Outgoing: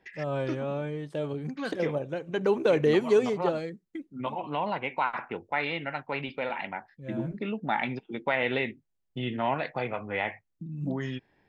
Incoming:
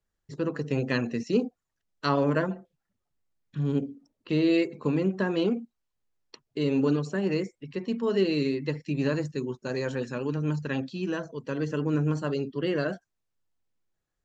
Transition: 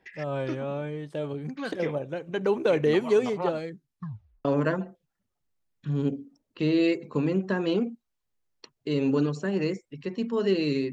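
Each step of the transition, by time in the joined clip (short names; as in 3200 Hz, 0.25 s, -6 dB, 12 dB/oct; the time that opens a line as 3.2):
outgoing
3.69 tape stop 0.76 s
4.45 switch to incoming from 2.15 s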